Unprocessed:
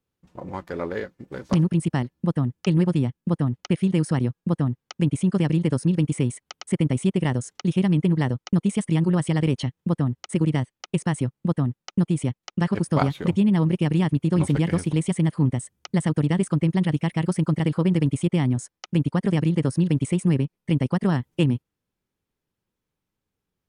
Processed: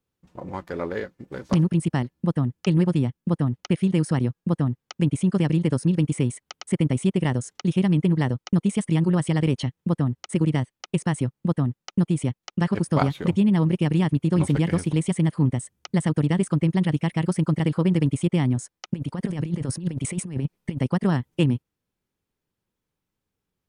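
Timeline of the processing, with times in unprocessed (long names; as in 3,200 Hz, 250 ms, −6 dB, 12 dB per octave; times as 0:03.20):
0:18.92–0:20.81: compressor whose output falls as the input rises −25 dBFS, ratio −0.5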